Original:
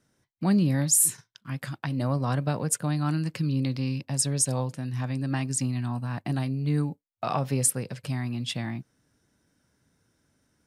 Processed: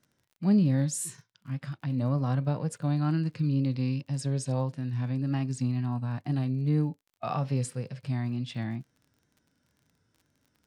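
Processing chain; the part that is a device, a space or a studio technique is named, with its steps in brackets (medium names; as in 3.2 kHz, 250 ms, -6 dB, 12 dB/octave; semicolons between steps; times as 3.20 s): harmonic-percussive split percussive -11 dB; lo-fi chain (low-pass 6.6 kHz 12 dB/octave; wow and flutter; crackle 30 per s -49 dBFS)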